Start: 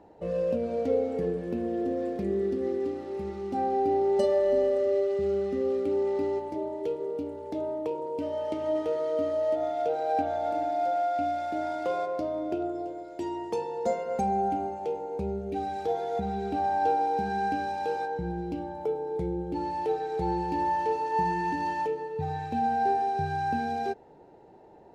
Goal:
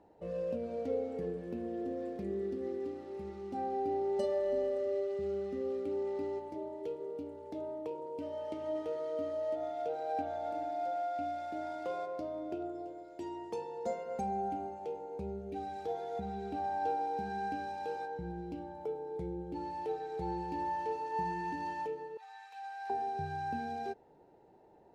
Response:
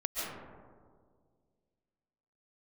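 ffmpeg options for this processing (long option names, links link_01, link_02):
-filter_complex "[0:a]asettb=1/sr,asplit=3[link_01][link_02][link_03];[link_01]atrim=end=22.174[link_04];[link_02]atrim=start=22.17:end=22.9,asetpts=PTS-STARTPTS,afade=type=in:duration=0.004:curve=qsin,afade=type=out:start_time=0.726:duration=0.004:curve=qsin,highpass=frequency=1000:width=0.5412,highpass=frequency=1000:width=1.3066[link_05];[link_03]atrim=start=22.896[link_06];[link_04][link_05]acrossfade=duration=0.004:curve1=hsin:curve2=qsin[link_07];[link_07][link_06]acrossfade=duration=0.004:curve1=qsin:curve2=hsin,volume=-8.5dB"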